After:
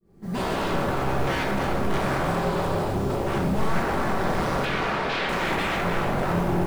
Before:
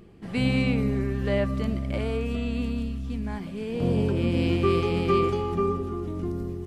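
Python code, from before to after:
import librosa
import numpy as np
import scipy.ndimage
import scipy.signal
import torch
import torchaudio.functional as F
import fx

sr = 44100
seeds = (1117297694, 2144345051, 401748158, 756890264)

p1 = fx.fade_in_head(x, sr, length_s=0.83)
p2 = fx.peak_eq(p1, sr, hz=2800.0, db=-14.0, octaves=0.9)
p3 = fx.over_compress(p2, sr, threshold_db=-29.0, ratio=-1.0)
p4 = p2 + F.gain(torch.from_numpy(p3), 1.5).numpy()
p5 = 10.0 ** (-26.0 / 20.0) * (np.abs((p4 / 10.0 ** (-26.0 / 20.0) + 3.0) % 4.0 - 2.0) - 1.0)
p6 = fx.mod_noise(p5, sr, seeds[0], snr_db=27)
p7 = fx.bandpass_edges(p6, sr, low_hz=250.0, high_hz=4700.0, at=(4.65, 5.29))
p8 = fx.echo_split(p7, sr, split_hz=440.0, low_ms=492, high_ms=302, feedback_pct=52, wet_db=-10)
p9 = fx.room_shoebox(p8, sr, seeds[1], volume_m3=460.0, walls='mixed', distance_m=1.1)
y = F.gain(torch.from_numpy(p9), 2.5).numpy()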